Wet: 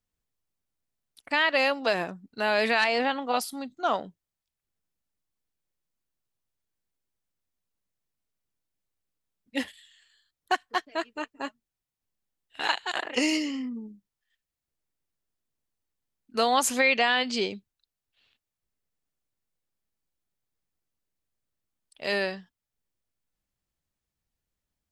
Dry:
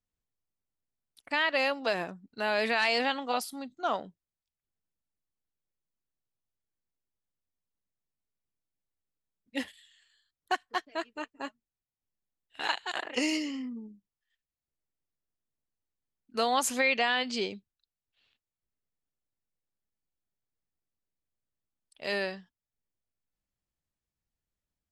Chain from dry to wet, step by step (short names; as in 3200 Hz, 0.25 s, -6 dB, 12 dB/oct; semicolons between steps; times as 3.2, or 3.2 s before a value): 2.84–3.34 high shelf 3200 Hz -10.5 dB; gain +4 dB